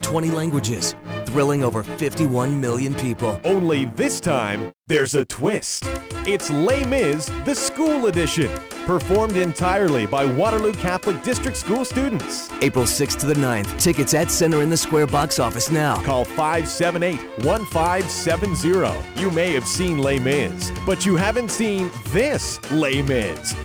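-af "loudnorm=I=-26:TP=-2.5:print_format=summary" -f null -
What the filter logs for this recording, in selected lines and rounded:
Input Integrated:    -20.7 LUFS
Input True Peak:      -8.3 dBTP
Input LRA:             2.4 LU
Input Threshold:     -30.7 LUFS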